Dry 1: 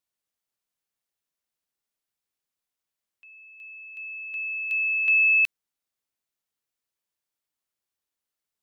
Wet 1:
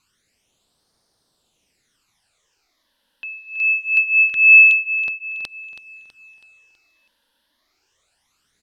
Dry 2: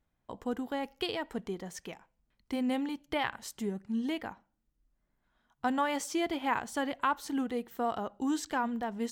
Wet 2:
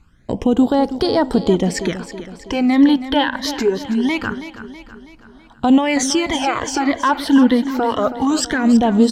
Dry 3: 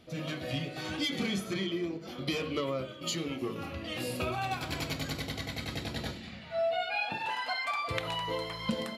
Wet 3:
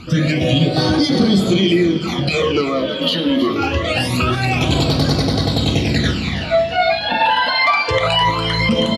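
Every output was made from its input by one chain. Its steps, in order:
low-pass filter 7,500 Hz 12 dB per octave
in parallel at −2 dB: downward compressor, threshold −39 dBFS
on the sum: brickwall limiter −25.5 dBFS
all-pass phaser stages 12, 0.24 Hz, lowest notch 120–2,600 Hz
repeating echo 325 ms, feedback 51%, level −12.5 dB
normalise the peak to −3 dBFS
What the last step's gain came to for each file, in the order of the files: +21.0, +21.0, +20.0 decibels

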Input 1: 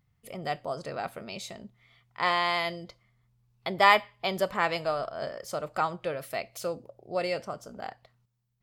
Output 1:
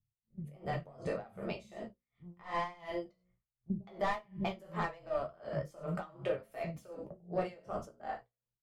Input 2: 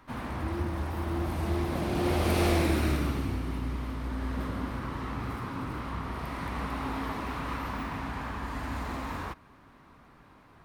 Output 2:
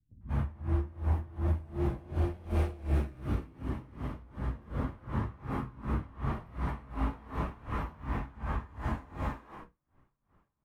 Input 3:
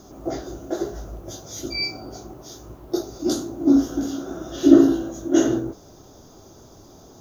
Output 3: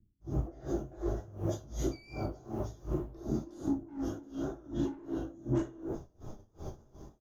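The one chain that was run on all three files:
automatic gain control gain up to 5 dB
parametric band 4,300 Hz −5.5 dB 0.74 octaves
multiband delay without the direct sound lows, highs 210 ms, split 230 Hz
noise gate −41 dBFS, range −20 dB
flanger 0.79 Hz, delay 9.2 ms, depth 6.5 ms, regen −33%
soft clipping −22 dBFS
downward compressor, threshold −38 dBFS
reverb whose tail is shaped and stops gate 120 ms falling, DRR 1.5 dB
pitch vibrato 3.4 Hz 27 cents
spectral tilt −2.5 dB per octave
mains-hum notches 60/120/180/240/300/360/420/480/540 Hz
tremolo with a sine in dB 2.7 Hz, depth 23 dB
level +4.5 dB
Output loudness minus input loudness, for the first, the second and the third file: −10.5, −3.5, −15.5 LU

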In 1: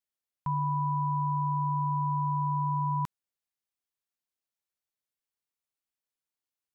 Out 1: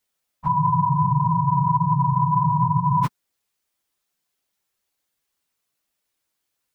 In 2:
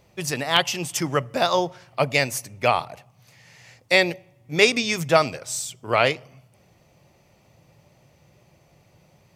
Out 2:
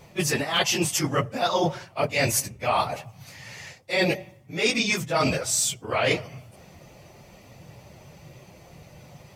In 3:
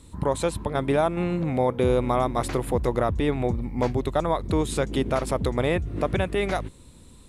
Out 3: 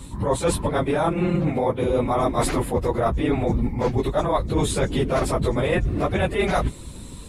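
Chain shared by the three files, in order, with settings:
random phases in long frames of 50 ms
reversed playback
downward compressor 16 to 1, threshold −29 dBFS
reversed playback
normalise the peak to −9 dBFS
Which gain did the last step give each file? +13.5, +9.0, +11.5 decibels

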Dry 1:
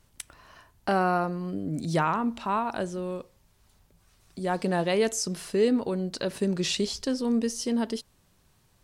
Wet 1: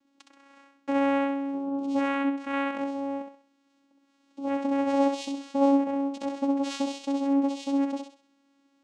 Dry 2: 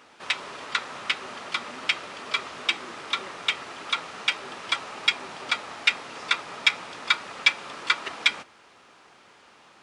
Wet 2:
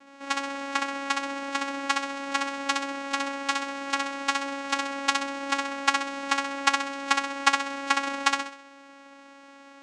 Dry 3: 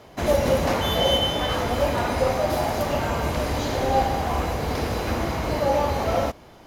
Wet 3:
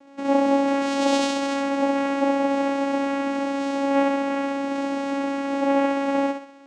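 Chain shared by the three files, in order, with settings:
channel vocoder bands 4, saw 277 Hz
on a send: feedback echo with a high-pass in the loop 65 ms, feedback 34%, high-pass 250 Hz, level −5 dB
on the sum: level −1.5 dB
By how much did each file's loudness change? +0.5, −0.5, +0.5 LU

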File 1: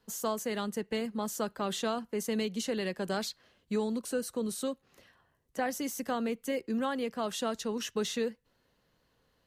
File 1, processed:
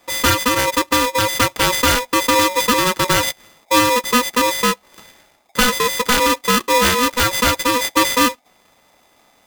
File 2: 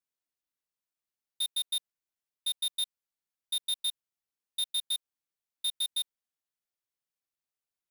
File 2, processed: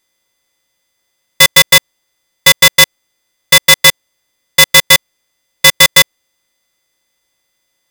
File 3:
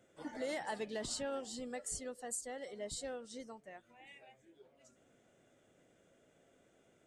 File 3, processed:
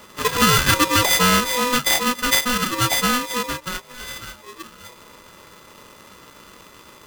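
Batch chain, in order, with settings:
samples sorted by size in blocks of 16 samples
ring modulator with a square carrier 740 Hz
normalise the peak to −3 dBFS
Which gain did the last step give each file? +17.0, +25.5, +23.5 decibels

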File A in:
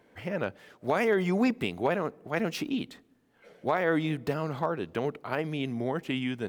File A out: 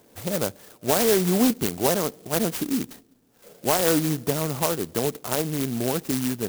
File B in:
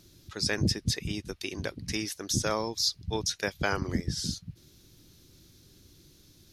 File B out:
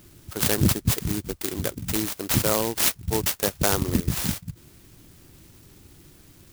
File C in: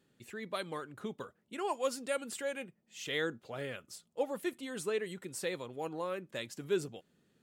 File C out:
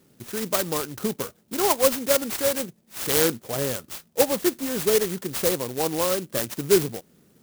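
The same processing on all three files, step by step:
converter with an unsteady clock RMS 0.14 ms
loudness normalisation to −24 LKFS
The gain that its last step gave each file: +5.5, +6.5, +14.0 decibels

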